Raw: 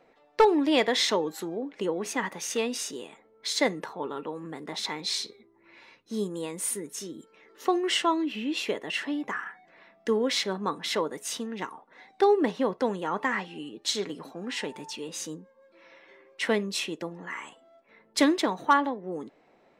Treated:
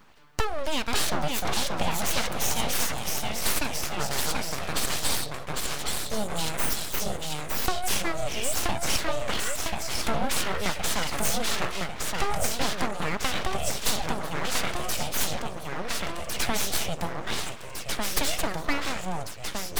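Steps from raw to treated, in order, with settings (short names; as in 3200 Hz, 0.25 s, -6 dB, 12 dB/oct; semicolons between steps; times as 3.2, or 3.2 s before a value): high shelf 5800 Hz +12 dB; compressor, threshold -29 dBFS, peak gain reduction 14 dB; echoes that change speed 0.519 s, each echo -1 st, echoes 3; full-wave rectifier; gain +7 dB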